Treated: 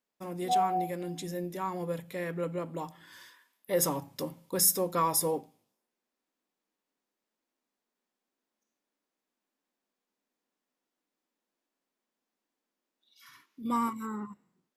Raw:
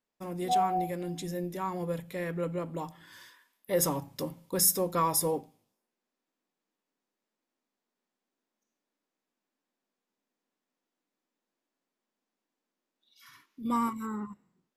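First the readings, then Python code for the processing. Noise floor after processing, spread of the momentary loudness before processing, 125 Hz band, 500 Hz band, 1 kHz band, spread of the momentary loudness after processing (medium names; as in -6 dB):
under -85 dBFS, 14 LU, -2.0 dB, -0.5 dB, 0.0 dB, 15 LU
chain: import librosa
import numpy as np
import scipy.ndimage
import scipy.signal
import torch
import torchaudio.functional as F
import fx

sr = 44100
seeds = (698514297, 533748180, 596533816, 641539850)

y = fx.low_shelf(x, sr, hz=84.0, db=-11.0)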